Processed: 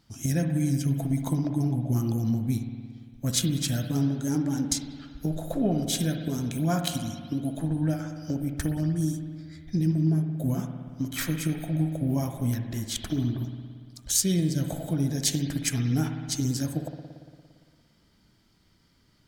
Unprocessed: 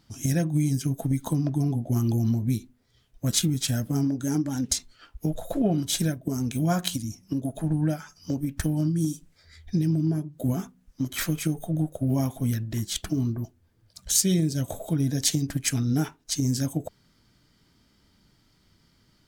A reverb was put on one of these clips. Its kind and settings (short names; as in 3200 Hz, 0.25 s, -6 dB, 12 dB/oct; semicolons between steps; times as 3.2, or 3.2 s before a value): spring tank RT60 1.9 s, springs 57 ms, chirp 45 ms, DRR 5.5 dB; gain -2 dB